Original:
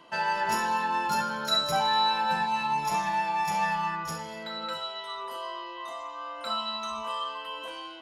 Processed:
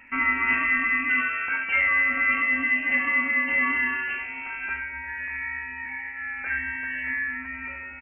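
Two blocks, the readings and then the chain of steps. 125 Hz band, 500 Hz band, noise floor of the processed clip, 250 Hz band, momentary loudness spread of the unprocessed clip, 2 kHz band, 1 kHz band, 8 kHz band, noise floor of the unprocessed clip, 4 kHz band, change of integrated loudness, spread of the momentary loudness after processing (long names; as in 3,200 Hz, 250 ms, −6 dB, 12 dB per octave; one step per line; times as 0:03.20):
can't be measured, −8.5 dB, −37 dBFS, +4.5 dB, 13 LU, +13.5 dB, −7.5 dB, below −40 dB, −40 dBFS, below −15 dB, +5.0 dB, 11 LU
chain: voice inversion scrambler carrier 2,900 Hz
single-tap delay 75 ms −10 dB
level +4 dB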